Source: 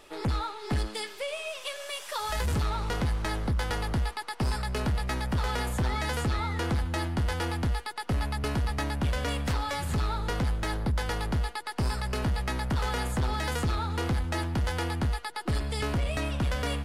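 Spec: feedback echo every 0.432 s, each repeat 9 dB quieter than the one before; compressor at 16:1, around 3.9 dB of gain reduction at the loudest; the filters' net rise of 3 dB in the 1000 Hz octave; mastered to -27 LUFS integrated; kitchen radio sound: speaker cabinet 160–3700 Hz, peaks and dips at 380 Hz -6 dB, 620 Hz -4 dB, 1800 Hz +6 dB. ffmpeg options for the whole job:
-af "equalizer=f=1k:t=o:g=4,acompressor=threshold=-28dB:ratio=16,highpass=160,equalizer=f=380:t=q:w=4:g=-6,equalizer=f=620:t=q:w=4:g=-4,equalizer=f=1.8k:t=q:w=4:g=6,lowpass=f=3.7k:w=0.5412,lowpass=f=3.7k:w=1.3066,aecho=1:1:432|864|1296|1728:0.355|0.124|0.0435|0.0152,volume=7dB"

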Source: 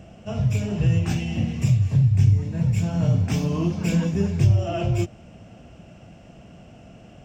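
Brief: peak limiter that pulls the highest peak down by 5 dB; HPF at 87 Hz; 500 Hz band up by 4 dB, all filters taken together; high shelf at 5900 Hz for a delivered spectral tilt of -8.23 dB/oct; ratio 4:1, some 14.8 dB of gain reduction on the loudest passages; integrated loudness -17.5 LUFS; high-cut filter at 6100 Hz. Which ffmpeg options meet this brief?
-af "highpass=87,lowpass=6.1k,equalizer=f=500:t=o:g=5.5,highshelf=f=5.9k:g=-3.5,acompressor=threshold=-33dB:ratio=4,volume=20dB,alimiter=limit=-7.5dB:level=0:latency=1"

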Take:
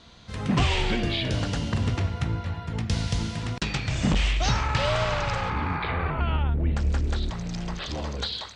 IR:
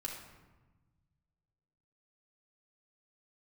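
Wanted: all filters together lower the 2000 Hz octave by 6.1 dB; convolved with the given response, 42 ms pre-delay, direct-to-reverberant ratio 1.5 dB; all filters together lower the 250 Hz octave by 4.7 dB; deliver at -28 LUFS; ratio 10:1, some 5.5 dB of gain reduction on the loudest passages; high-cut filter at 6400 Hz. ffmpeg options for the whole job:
-filter_complex "[0:a]lowpass=6.4k,equalizer=f=250:t=o:g=-7,equalizer=f=2k:t=o:g=-8,acompressor=threshold=-25dB:ratio=10,asplit=2[a][b];[1:a]atrim=start_sample=2205,adelay=42[c];[b][c]afir=irnorm=-1:irlink=0,volume=-1.5dB[d];[a][d]amix=inputs=2:normalize=0,volume=0.5dB"

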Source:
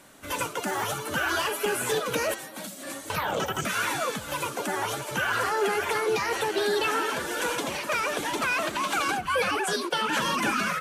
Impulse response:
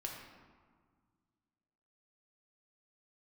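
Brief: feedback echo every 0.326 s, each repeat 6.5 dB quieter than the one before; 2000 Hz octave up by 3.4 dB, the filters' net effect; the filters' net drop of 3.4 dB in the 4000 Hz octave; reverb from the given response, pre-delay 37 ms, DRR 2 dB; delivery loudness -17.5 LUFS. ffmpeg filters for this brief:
-filter_complex "[0:a]equalizer=f=2k:t=o:g=6.5,equalizer=f=4k:t=o:g=-8,aecho=1:1:326|652|978|1304|1630|1956:0.473|0.222|0.105|0.0491|0.0231|0.0109,asplit=2[a][b];[1:a]atrim=start_sample=2205,adelay=37[c];[b][c]afir=irnorm=-1:irlink=0,volume=-1dB[d];[a][d]amix=inputs=2:normalize=0,volume=5dB"

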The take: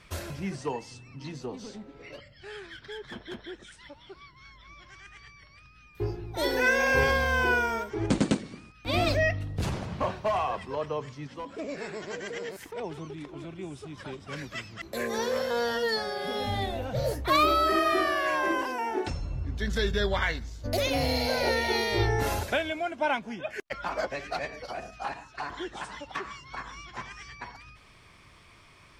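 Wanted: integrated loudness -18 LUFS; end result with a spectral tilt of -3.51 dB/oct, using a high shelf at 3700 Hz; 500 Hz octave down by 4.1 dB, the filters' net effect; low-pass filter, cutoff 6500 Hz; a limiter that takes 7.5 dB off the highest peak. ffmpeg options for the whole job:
-af "lowpass=6.5k,equalizer=f=500:t=o:g=-5,highshelf=f=3.7k:g=-4.5,volume=15dB,alimiter=limit=-5.5dB:level=0:latency=1"

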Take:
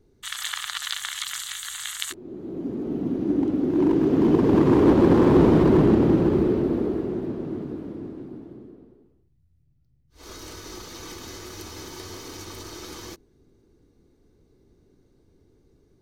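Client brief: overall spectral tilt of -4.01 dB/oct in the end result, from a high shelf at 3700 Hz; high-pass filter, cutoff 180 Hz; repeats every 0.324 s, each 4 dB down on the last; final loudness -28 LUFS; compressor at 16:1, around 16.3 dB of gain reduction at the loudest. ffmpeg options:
-af "highpass=180,highshelf=f=3.7k:g=-8,acompressor=threshold=-30dB:ratio=16,aecho=1:1:324|648|972|1296|1620|1944|2268|2592|2916:0.631|0.398|0.25|0.158|0.0994|0.0626|0.0394|0.0249|0.0157,volume=6.5dB"

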